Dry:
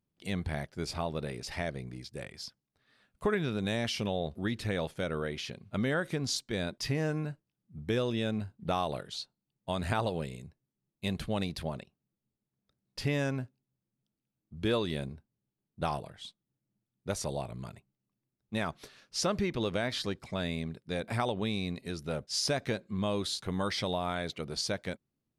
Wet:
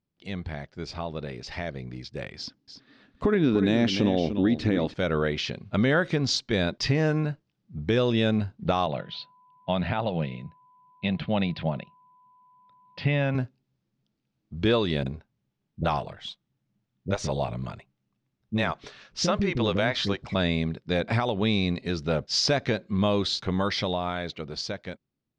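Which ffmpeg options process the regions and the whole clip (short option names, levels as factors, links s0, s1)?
-filter_complex "[0:a]asettb=1/sr,asplit=3[s0][s1][s2];[s0]atrim=end=2.384[s3];[s1]atrim=start=2.38:end=4.94,asetpts=PTS-STARTPTS,afade=t=in:d=0.004:c=qsin,afade=t=out:st=2.556:d=0.004:c=qsin,equalizer=f=280:t=o:w=0.83:g=14.5,aecho=1:1:296:0.299,atrim=end_sample=112896[s4];[s2]atrim=start=4.936[s5];[s3][s4]acrossfade=d=0.004:c1=hsin:c2=qsin[s6];[s6][s5]acrossfade=d=0.004:c1=qsin:c2=hsin,asettb=1/sr,asplit=3[s7][s8][s9];[s7]atrim=end=8.864[s10];[s8]atrim=start=8.86:end=13.35,asetpts=PTS-STARTPTS,afade=t=in:d=0.004:c=qsin,afade=t=out:st=4.486:d=0.004:c=qsin,aeval=exprs='val(0)+0.000891*sin(2*PI*1000*n/s)':c=same,highpass=130,equalizer=f=160:t=q:w=4:g=4,equalizer=f=290:t=q:w=4:g=-5,equalizer=f=410:t=q:w=4:g=-9,equalizer=f=1100:t=q:w=4:g=-6,equalizer=f=1600:t=q:w=4:g=-4,lowpass=f=3400:w=0.5412,lowpass=f=3400:w=1.3066[s11];[s9]atrim=start=13.346[s12];[s10][s11]acrossfade=d=0.004:c1=hsin:c2=qsin[s13];[s13][s12]acrossfade=d=0.004:c1=qsin:c2=hsin,asettb=1/sr,asplit=3[s14][s15][s16];[s14]atrim=end=15.034[s17];[s15]atrim=start=15.03:end=20.35,asetpts=PTS-STARTPTS,afade=t=in:d=0.004:c=qsin,afade=t=out:st=5.316:d=0.004:c=qsin,equalizer=f=4600:t=o:w=0.41:g=-4,acrossover=split=380[s18][s19];[s19]adelay=30[s20];[s18][s20]amix=inputs=2:normalize=0,atrim=end_sample=234612[s21];[s16]atrim=start=20.346[s22];[s17][s21]acrossfade=d=0.004:c1=hsin:c2=qsin[s23];[s23][s22]acrossfade=d=0.004:c1=qsin:c2=hsin,lowpass=f=5600:w=0.5412,lowpass=f=5600:w=1.3066,alimiter=limit=0.0794:level=0:latency=1:release=314,dynaudnorm=f=370:g=11:m=2.82"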